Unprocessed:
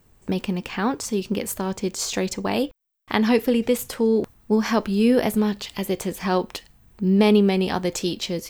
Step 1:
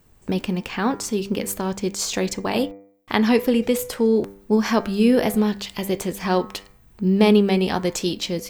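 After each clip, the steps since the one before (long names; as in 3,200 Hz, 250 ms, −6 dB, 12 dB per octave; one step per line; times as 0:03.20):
hum removal 98.9 Hz, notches 24
level +1.5 dB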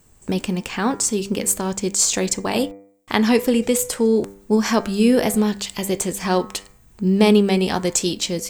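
parametric band 7,900 Hz +11.5 dB 0.74 octaves
level +1 dB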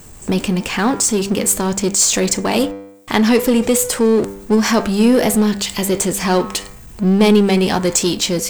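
power curve on the samples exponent 0.7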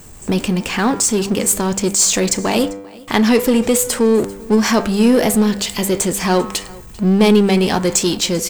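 single-tap delay 394 ms −23 dB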